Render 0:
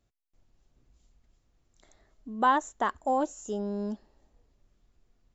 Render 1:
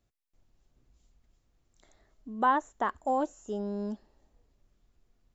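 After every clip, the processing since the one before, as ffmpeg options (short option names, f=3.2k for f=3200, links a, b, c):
-filter_complex "[0:a]acrossover=split=2700[a][b];[b]acompressor=threshold=-53dB:ratio=4:attack=1:release=60[c];[a][c]amix=inputs=2:normalize=0,volume=-1.5dB"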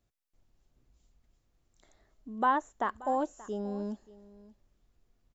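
-af "aecho=1:1:580:0.106,volume=-1.5dB"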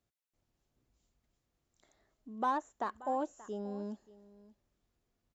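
-filter_complex "[0:a]highpass=f=99:p=1,acrossover=split=1200[a][b];[b]asoftclip=type=tanh:threshold=-37.5dB[c];[a][c]amix=inputs=2:normalize=0,volume=-4dB"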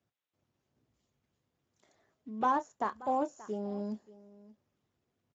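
-filter_complex "[0:a]asplit=2[a][b];[b]adelay=28,volume=-12dB[c];[a][c]amix=inputs=2:normalize=0,volume=3dB" -ar 16000 -c:a libspeex -b:a 13k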